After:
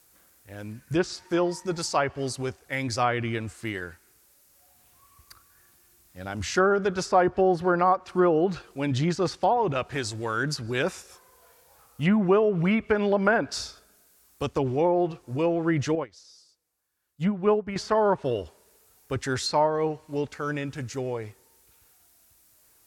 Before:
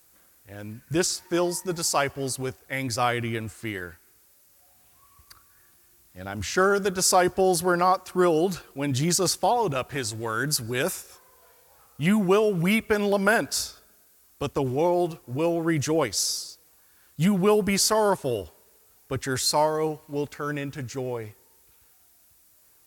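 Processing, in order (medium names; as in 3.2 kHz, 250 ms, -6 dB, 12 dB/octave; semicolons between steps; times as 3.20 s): low-pass that closes with the level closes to 1.7 kHz, closed at -17.5 dBFS; 15.95–17.76 s: upward expansion 2.5:1, over -30 dBFS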